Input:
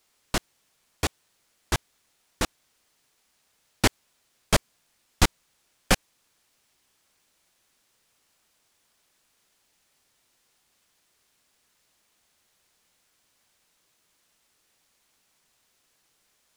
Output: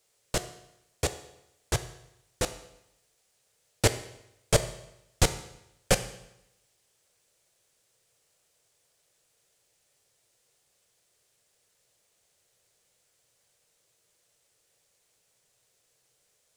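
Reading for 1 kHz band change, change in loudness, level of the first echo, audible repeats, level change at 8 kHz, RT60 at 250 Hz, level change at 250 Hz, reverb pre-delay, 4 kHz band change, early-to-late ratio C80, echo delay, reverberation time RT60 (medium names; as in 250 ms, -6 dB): -4.5 dB, -2.5 dB, no echo, no echo, +0.5 dB, 0.85 s, -5.0 dB, 8 ms, -3.0 dB, 15.0 dB, no echo, 0.85 s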